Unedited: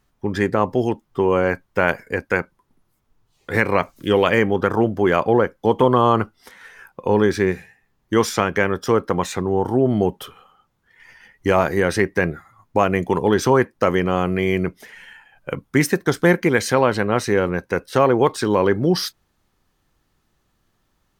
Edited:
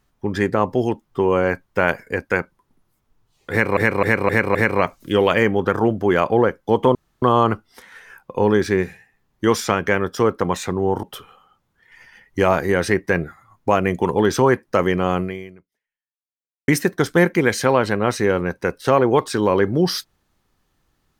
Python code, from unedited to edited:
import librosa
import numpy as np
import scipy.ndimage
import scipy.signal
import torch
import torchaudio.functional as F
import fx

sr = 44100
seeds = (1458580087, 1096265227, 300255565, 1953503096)

y = fx.edit(x, sr, fx.repeat(start_s=3.51, length_s=0.26, count=5),
    fx.insert_room_tone(at_s=5.91, length_s=0.27),
    fx.cut(start_s=9.72, length_s=0.39),
    fx.fade_out_span(start_s=14.28, length_s=1.48, curve='exp'), tone=tone)